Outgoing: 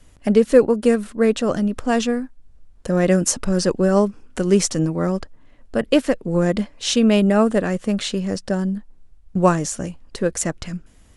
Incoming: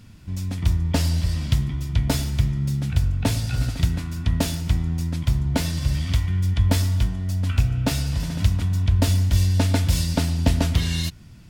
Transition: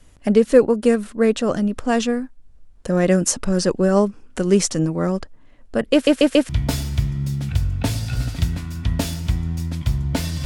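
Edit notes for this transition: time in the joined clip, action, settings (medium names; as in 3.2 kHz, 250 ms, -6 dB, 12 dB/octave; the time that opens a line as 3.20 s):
outgoing
5.93 s: stutter in place 0.14 s, 4 plays
6.49 s: go over to incoming from 1.90 s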